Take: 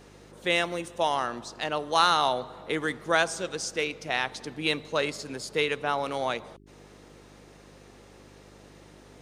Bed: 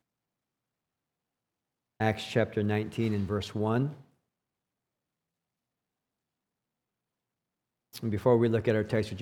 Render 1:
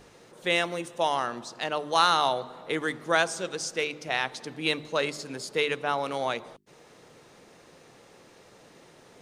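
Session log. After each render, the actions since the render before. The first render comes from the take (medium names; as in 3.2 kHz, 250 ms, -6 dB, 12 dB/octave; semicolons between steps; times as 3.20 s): de-hum 50 Hz, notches 8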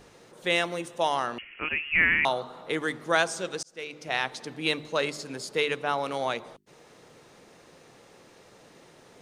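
1.38–2.25 s: frequency inversion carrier 3.1 kHz; 3.63–4.16 s: fade in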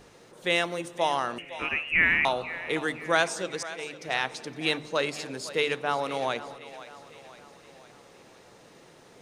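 two-band feedback delay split 470 Hz, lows 302 ms, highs 513 ms, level -15 dB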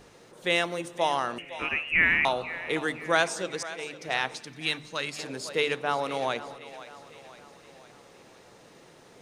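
4.38–5.19 s: peaking EQ 500 Hz -10 dB 2.2 oct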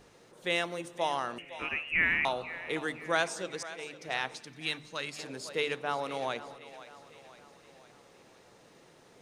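trim -5 dB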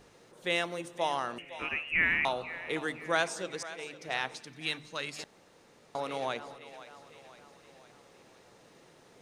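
5.24–5.95 s: room tone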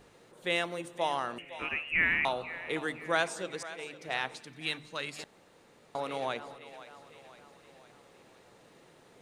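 peaking EQ 5.4 kHz -5 dB 0.38 oct; band-stop 6.4 kHz, Q 25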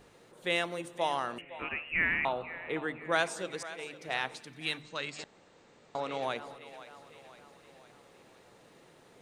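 1.41–3.12 s: boxcar filter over 8 samples; 4.82–6.23 s: brick-wall FIR low-pass 8.6 kHz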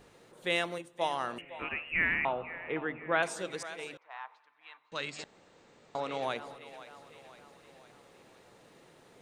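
0.78–1.20 s: upward expansion, over -49 dBFS; 2.14–3.23 s: steep low-pass 3.1 kHz; 3.97–4.92 s: ladder band-pass 1.1 kHz, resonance 65%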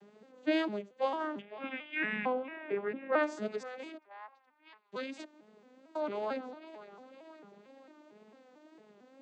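vocoder on a broken chord major triad, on G#3, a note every 225 ms; wow and flutter 58 cents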